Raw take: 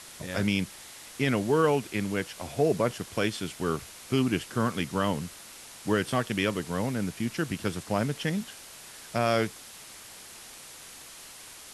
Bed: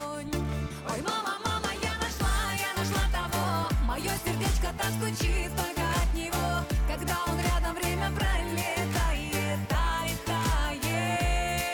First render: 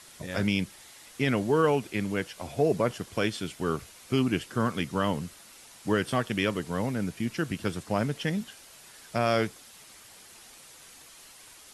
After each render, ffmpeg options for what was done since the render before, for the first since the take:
-af "afftdn=nr=6:nf=-47"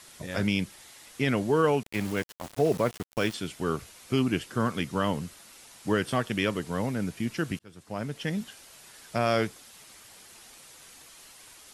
-filter_complex "[0:a]asettb=1/sr,asplit=3[a][b][c];[a]atrim=end=1.834[d];[b]atrim=start=1.83:end=3.34,asetpts=PTS-STARTPTS,afade=t=in:d=0.004:c=qsin,afade=t=out:st=1.506:d=0.004:c=qsin,aeval=exprs='val(0)*gte(abs(val(0)),0.0168)':c=same[e];[c]atrim=start=3.336[f];[d][e]acrossfade=d=0.004:c1=hsin:c2=qsin[g];[g][f]acrossfade=d=0.004:c1=qsin:c2=hsin,asplit=2[h][i];[h]atrim=end=7.59,asetpts=PTS-STARTPTS,afade=t=out:st=7.586:d=0.004:c=hsin[j];[i]atrim=start=7.59,asetpts=PTS-STARTPTS,afade=t=in:d=0.84[k];[j][k]concat=n=2:v=0:a=1"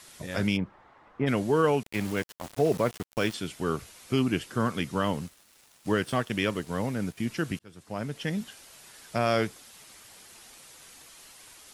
-filter_complex "[0:a]asplit=3[a][b][c];[a]afade=t=out:st=0.56:d=0.02[d];[b]lowpass=f=1.1k:t=q:w=1.9,afade=t=in:st=0.56:d=0.02,afade=t=out:st=1.26:d=0.02[e];[c]afade=t=in:st=1.26:d=0.02[f];[d][e][f]amix=inputs=3:normalize=0,asettb=1/sr,asplit=3[g][h][i];[g]atrim=end=5.014[j];[h]atrim=start=5.01:end=7.18,asetpts=PTS-STARTPTS,afade=t=in:d=0.004:c=qsin,afade=t=out:st=2.166:d=0.004:c=qsin,aeval=exprs='sgn(val(0))*max(abs(val(0))-0.00282,0)':c=same[k];[i]atrim=start=7.176[l];[j][k]acrossfade=d=0.004:c1=hsin:c2=qsin[m];[m][l]acrossfade=d=0.004:c1=qsin:c2=hsin"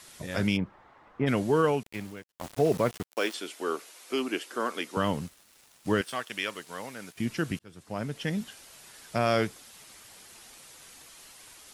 -filter_complex "[0:a]asettb=1/sr,asplit=3[a][b][c];[a]atrim=end=3.064[d];[b]atrim=start=3.06:end=4.97,asetpts=PTS-STARTPTS,afade=t=in:d=0.004:c=qsin,afade=t=out:st=1.906:d=0.004:c=qsin,highpass=f=310:w=0.5412,highpass=f=310:w=1.3066[e];[c]atrim=start=4.966[f];[d][e]acrossfade=d=0.004:c1=hsin:c2=qsin[g];[g][f]acrossfade=d=0.004:c1=qsin:c2=hsin,asettb=1/sr,asplit=3[h][i][j];[h]atrim=end=6.014[k];[i]atrim=start=6.01:end=7.16,asetpts=PTS-STARTPTS,afade=t=in:d=0.004:c=qsin,afade=t=out:st=1.146:d=0.004:c=qsin,highpass=f=1.2k:p=1[l];[j]atrim=start=7.156[m];[k][l]acrossfade=d=0.004:c1=hsin:c2=qsin[n];[n][m]acrossfade=d=0.004:c1=qsin:c2=hsin,asplit=2[o][p];[o]atrim=end=2.33,asetpts=PTS-STARTPTS,afade=t=out:st=1.57:d=0.76[q];[p]atrim=start=2.33,asetpts=PTS-STARTPTS,afade=t=in:d=0.004:c=hsin[r];[q][r]concat=n=2:v=0:a=1"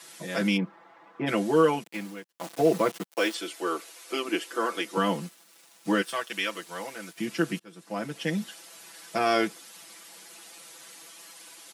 -af "highpass=f=190:w=0.5412,highpass=f=190:w=1.3066,aecho=1:1:6:0.97"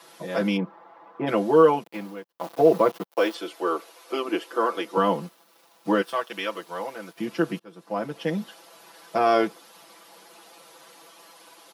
-af "equalizer=f=500:t=o:w=1:g=5,equalizer=f=1k:t=o:w=1:g=6,equalizer=f=2k:t=o:w=1:g=-4,equalizer=f=8k:t=o:w=1:g=-10"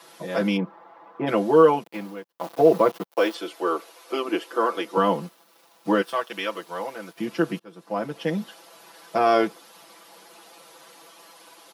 -af "volume=1dB"

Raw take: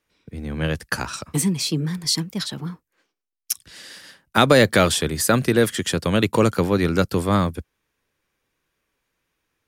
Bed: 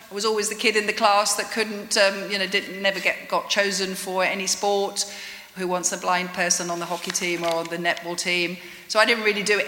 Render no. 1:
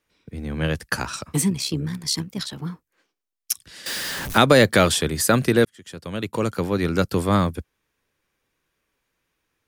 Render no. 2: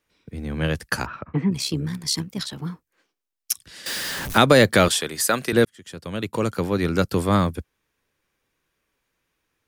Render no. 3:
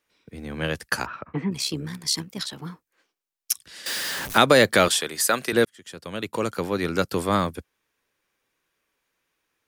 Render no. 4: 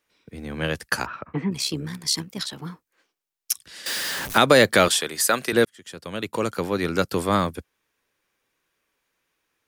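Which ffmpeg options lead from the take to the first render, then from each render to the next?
-filter_complex "[0:a]asettb=1/sr,asplit=3[a][b][c];[a]atrim=end=1.504[d];[b]atrim=start=1.5:end=2.62,asetpts=PTS-STARTPTS,afade=t=in:d=0.004:c=qsin,afade=t=out:st=1.116:d=0.004:c=qsin,tremolo=f=67:d=0.571[e];[c]atrim=start=2.616[f];[d][e]acrossfade=d=0.004:c1=hsin:c2=qsin[g];[g][f]acrossfade=d=0.004:c1=qsin:c2=hsin,asettb=1/sr,asplit=3[h][i][j];[h]atrim=end=3.864[k];[i]atrim=start=3.86:end=4.38,asetpts=PTS-STARTPTS,afade=t=in:d=0.004:c=qsin,afade=t=out:st=0.516:d=0.004:c=qsin,aeval=exprs='val(0)+0.5*0.0631*sgn(val(0))':c=same[l];[j]atrim=start=4.376[m];[k][l]acrossfade=d=0.004:c1=hsin:c2=qsin[n];[n][m]acrossfade=d=0.004:c1=qsin:c2=hsin,asplit=2[o][p];[o]atrim=end=5.65,asetpts=PTS-STARTPTS,afade=t=out:st=5.646:d=0.004:c=hsin[q];[p]atrim=start=5.65,asetpts=PTS-STARTPTS,afade=t=in:d=1.59[r];[q][r]concat=n=2:v=0:a=1"
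-filter_complex "[0:a]asplit=3[a][b][c];[a]afade=t=out:st=1.05:d=0.02[d];[b]lowpass=f=2.1k:w=0.5412,lowpass=f=2.1k:w=1.3066,afade=t=in:st=1.05:d=0.02,afade=t=out:st=1.51:d=0.02[e];[c]afade=t=in:st=1.51:d=0.02[f];[d][e][f]amix=inputs=3:normalize=0,asettb=1/sr,asplit=3[g][h][i];[g]atrim=end=4.884[j];[h]atrim=start=4.88:end=5.53,asetpts=PTS-STARTPTS,afade=t=in:d=0.004:c=qsin,afade=t=out:st=0.646:d=0.004:c=qsin,highpass=f=620:p=1[k];[i]atrim=start=5.526[l];[j][k]acrossfade=d=0.004:c1=hsin:c2=qsin[m];[m][l]acrossfade=d=0.004:c1=qsin:c2=hsin"
-af "lowshelf=f=200:g=-10.5"
-af "volume=1dB,alimiter=limit=-3dB:level=0:latency=1"

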